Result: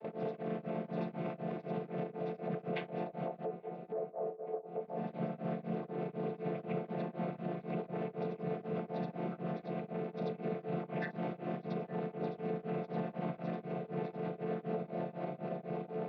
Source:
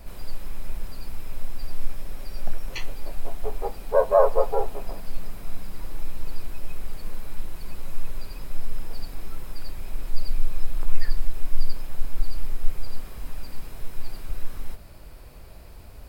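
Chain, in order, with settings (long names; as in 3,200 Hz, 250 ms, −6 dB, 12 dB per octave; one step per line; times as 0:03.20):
channel vocoder with a chord as carrier minor triad, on D3
noise gate with hold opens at −46 dBFS
flat-topped bell 500 Hz +14.5 dB 1.3 octaves
downward compressor 6 to 1, threshold −44 dBFS, peak gain reduction 38.5 dB
brickwall limiter −43 dBFS, peak gain reduction 12.5 dB
loudspeaker in its box 150–3,100 Hz, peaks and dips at 190 Hz +3 dB, 340 Hz −7 dB, 570 Hz −7 dB
feedback echo with a band-pass in the loop 854 ms, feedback 58%, band-pass 510 Hz, level −6 dB
tremolo along a rectified sine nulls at 4 Hz
level +18 dB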